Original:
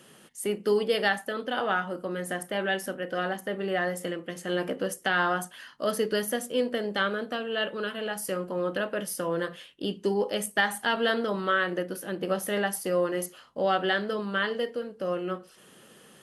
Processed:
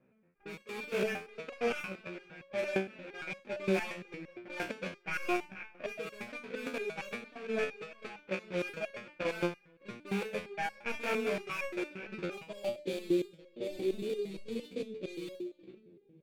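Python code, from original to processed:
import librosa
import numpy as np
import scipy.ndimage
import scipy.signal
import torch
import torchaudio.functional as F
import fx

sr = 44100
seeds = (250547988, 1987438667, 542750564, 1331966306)

y = scipy.signal.medfilt(x, 41)
y = fx.mod_noise(y, sr, seeds[0], snr_db=11)
y = y + 10.0 ** (-18.5 / 20.0) * np.pad(y, (int(436 * sr / 1000.0), 0))[:len(y)]
y = fx.filter_sweep_lowpass(y, sr, from_hz=1600.0, to_hz=360.0, start_s=12.26, end_s=12.98, q=2.9)
y = fx.sample_hold(y, sr, seeds[1], rate_hz=4000.0, jitter_pct=20)
y = fx.peak_eq(y, sr, hz=2400.0, db=14.0, octaves=0.36)
y = fx.hum_notches(y, sr, base_hz=60, count=6)
y = fx.hpss(y, sr, part='harmonic', gain_db=7)
y = fx.high_shelf(y, sr, hz=4600.0, db=-7.5)
y = fx.env_lowpass(y, sr, base_hz=1500.0, full_db=-18.5)
y = fx.level_steps(y, sr, step_db=13)
y = fx.resonator_held(y, sr, hz=8.7, low_hz=64.0, high_hz=550.0)
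y = y * 10.0 ** (3.0 / 20.0)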